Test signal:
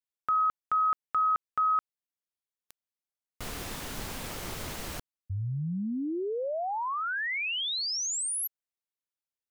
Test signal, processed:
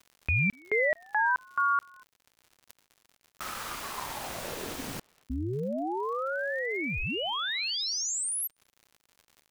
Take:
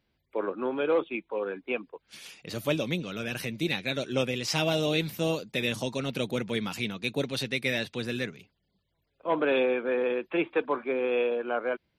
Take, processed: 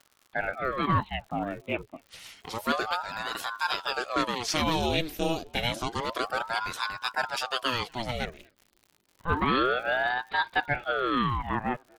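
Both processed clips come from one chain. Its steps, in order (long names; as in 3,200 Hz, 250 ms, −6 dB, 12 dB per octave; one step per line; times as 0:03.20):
far-end echo of a speakerphone 240 ms, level −28 dB
surface crackle 140 per second −45 dBFS
ring modulator whose carrier an LFO sweeps 710 Hz, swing 80%, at 0.29 Hz
level +3 dB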